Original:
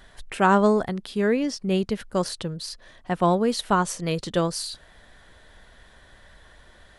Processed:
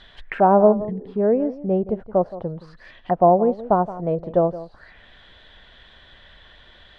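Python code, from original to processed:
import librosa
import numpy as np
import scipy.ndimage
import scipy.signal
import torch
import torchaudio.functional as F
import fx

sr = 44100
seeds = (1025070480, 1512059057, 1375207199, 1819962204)

y = fx.spec_repair(x, sr, seeds[0], start_s=0.75, length_s=0.35, low_hz=240.0, high_hz=1700.0, source='after')
y = y + 10.0 ** (-15.5 / 20.0) * np.pad(y, (int(171 * sr / 1000.0), 0))[:len(y)]
y = fx.envelope_lowpass(y, sr, base_hz=690.0, top_hz=3900.0, q=3.4, full_db=-26.5, direction='down')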